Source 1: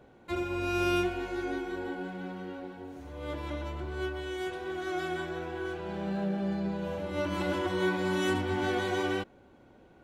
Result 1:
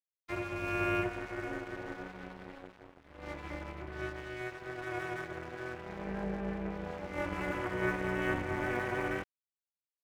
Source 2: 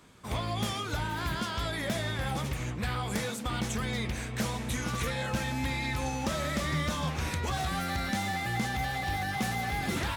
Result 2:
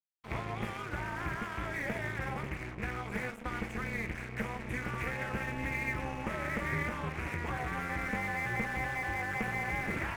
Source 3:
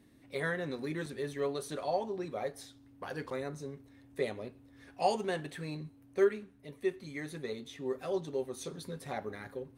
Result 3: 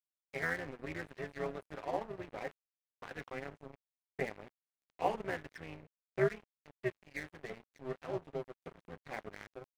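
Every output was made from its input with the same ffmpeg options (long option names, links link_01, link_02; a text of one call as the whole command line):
ffmpeg -i in.wav -af "highshelf=frequency=3100:width_type=q:width=3:gain=-12.5,aeval=exprs='sgn(val(0))*max(abs(val(0))-0.00708,0)':channel_layout=same,adynamicequalizer=threshold=0.00178:dfrequency=4100:dqfactor=1.8:tfrequency=4100:tqfactor=1.8:attack=5:release=100:ratio=0.375:range=2.5:mode=cutabove:tftype=bell,tremolo=f=250:d=0.824,areverse,acompressor=mode=upward:threshold=-55dB:ratio=2.5,areverse" out.wav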